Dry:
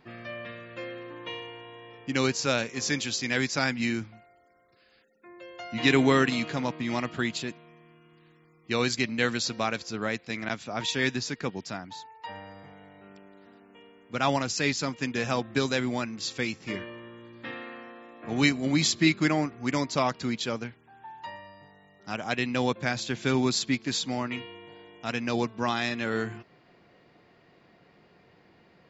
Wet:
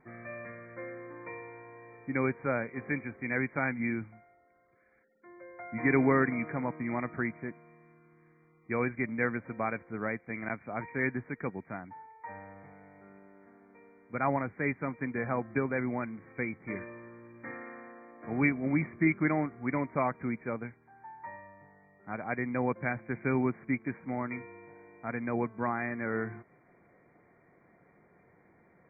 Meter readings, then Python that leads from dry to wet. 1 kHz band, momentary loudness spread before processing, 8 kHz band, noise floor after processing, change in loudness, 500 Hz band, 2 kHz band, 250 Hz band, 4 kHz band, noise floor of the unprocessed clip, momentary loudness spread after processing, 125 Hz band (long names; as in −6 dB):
−3.5 dB, 18 LU, can't be measured, −64 dBFS, −4.5 dB, −3.5 dB, −4.0 dB, −3.5 dB, below −40 dB, −61 dBFS, 18 LU, −3.5 dB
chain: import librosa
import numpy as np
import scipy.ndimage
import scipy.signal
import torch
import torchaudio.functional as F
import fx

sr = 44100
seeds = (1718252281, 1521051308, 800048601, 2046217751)

y = fx.brickwall_lowpass(x, sr, high_hz=2400.0)
y = F.gain(torch.from_numpy(y), -3.5).numpy()